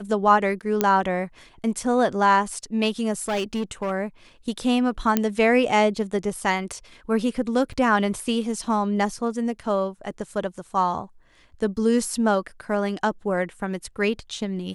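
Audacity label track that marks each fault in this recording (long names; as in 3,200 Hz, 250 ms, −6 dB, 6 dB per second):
0.810000	0.810000	click −6 dBFS
3.220000	3.920000	clipping −21 dBFS
5.170000	5.170000	click −6 dBFS
7.730000	7.740000	drop-out 5.4 ms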